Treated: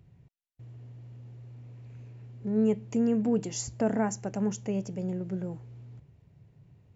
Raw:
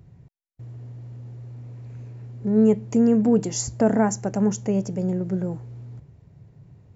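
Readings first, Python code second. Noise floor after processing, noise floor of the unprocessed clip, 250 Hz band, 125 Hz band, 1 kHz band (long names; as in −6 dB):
−63 dBFS, −55 dBFS, −8.0 dB, −8.0 dB, −7.5 dB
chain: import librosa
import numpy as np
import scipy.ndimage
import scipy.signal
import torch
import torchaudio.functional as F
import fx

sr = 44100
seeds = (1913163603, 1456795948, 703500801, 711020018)

y = fx.peak_eq(x, sr, hz=2800.0, db=6.5, octaves=0.88)
y = y * 10.0 ** (-8.0 / 20.0)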